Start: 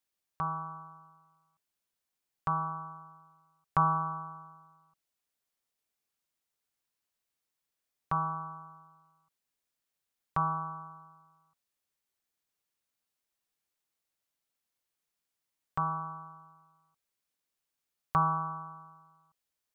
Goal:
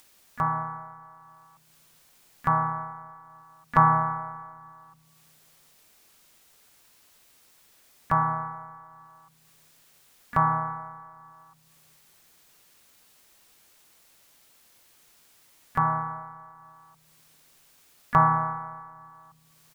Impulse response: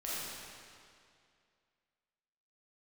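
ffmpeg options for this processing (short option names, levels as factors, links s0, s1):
-filter_complex "[0:a]acompressor=mode=upward:threshold=0.00316:ratio=2.5,asplit=2[s0][s1];[1:a]atrim=start_sample=2205,lowshelf=f=140:g=5.5[s2];[s1][s2]afir=irnorm=-1:irlink=0,volume=0.0631[s3];[s0][s3]amix=inputs=2:normalize=0,asplit=3[s4][s5][s6];[s5]asetrate=35002,aresample=44100,atempo=1.25992,volume=0.282[s7];[s6]asetrate=66075,aresample=44100,atempo=0.66742,volume=0.158[s8];[s4][s7][s8]amix=inputs=3:normalize=0,volume=2.24"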